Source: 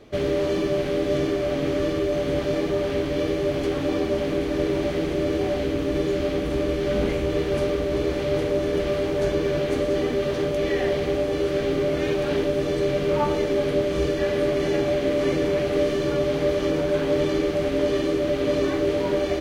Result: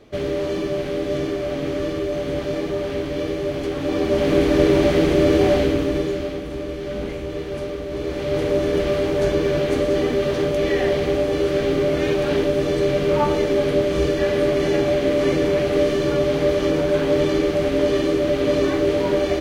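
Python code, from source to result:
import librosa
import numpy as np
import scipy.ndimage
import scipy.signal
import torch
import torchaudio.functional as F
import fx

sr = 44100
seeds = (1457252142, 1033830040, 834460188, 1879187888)

y = fx.gain(x, sr, db=fx.line((3.75, -0.5), (4.38, 8.0), (5.54, 8.0), (6.45, -4.5), (7.86, -4.5), (8.51, 3.5)))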